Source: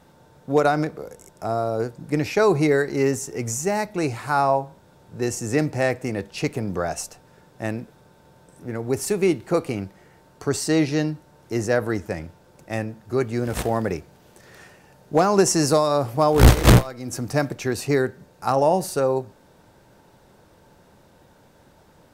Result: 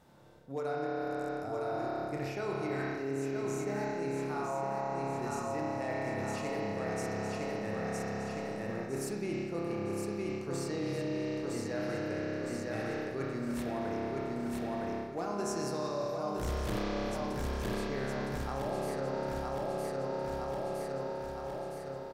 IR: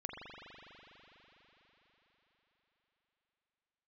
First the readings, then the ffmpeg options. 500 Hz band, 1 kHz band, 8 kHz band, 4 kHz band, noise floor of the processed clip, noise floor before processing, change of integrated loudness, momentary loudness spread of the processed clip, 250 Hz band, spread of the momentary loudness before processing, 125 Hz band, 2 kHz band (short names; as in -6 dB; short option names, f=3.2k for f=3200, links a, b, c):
-11.5 dB, -11.5 dB, -17.0 dB, -14.0 dB, -41 dBFS, -55 dBFS, -13.5 dB, 2 LU, -11.0 dB, 14 LU, -15.5 dB, -11.5 dB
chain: -filter_complex "[0:a]aecho=1:1:962|1924|2886|3848|4810|5772:0.596|0.274|0.126|0.058|0.0267|0.0123[a];[1:a]atrim=start_sample=2205,asetrate=61740,aresample=44100[b];[a][b]afir=irnorm=-1:irlink=0,areverse,acompressor=threshold=-31dB:ratio=6,areverse,volume=-1.5dB"